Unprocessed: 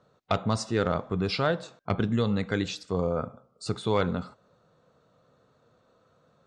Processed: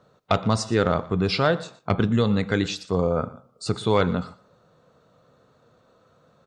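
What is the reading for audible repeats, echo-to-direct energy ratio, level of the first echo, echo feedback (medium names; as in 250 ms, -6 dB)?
1, -19.0 dB, -19.0 dB, no regular repeats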